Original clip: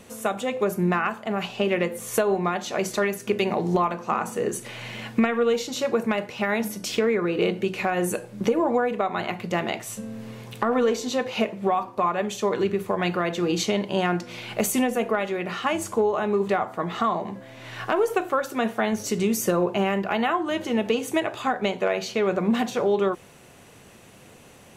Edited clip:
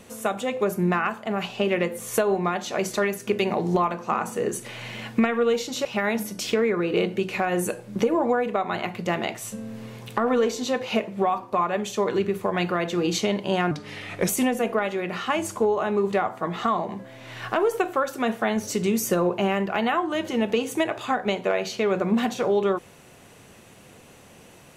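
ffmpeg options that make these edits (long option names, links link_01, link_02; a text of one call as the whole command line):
ffmpeg -i in.wav -filter_complex "[0:a]asplit=4[link_01][link_02][link_03][link_04];[link_01]atrim=end=5.852[link_05];[link_02]atrim=start=6.298:end=14.164[link_06];[link_03]atrim=start=14.16:end=14.65,asetpts=PTS-STARTPTS,asetrate=37485,aresample=44100,atrim=end_sample=25422,asetpts=PTS-STARTPTS[link_07];[link_04]atrim=start=14.646[link_08];[link_05][link_06]acrossfade=duration=0.004:curve1=hsin:curve2=hsin[link_09];[link_09][link_07]acrossfade=duration=0.004:curve1=hsin:curve2=hsin[link_10];[link_10][link_08]acrossfade=duration=0.004:curve1=hsin:curve2=hsin" out.wav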